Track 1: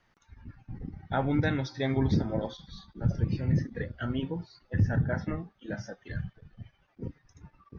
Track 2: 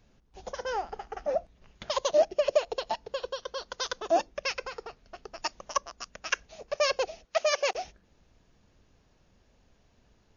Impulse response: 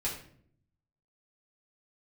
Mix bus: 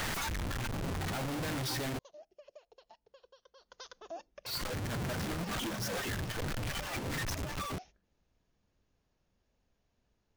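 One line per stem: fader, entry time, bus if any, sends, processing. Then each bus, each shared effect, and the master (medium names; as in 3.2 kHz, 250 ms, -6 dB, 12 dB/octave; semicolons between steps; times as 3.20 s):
-3.5 dB, 0.00 s, muted 1.99–4.46 s, no send, one-bit comparator
3.56 s -23.5 dB -> 3.81 s -13 dB, 0.00 s, no send, compression 2:1, threshold -33 dBFS, peak gain reduction 8.5 dB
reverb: none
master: peak limiter -34.5 dBFS, peak gain reduction 9 dB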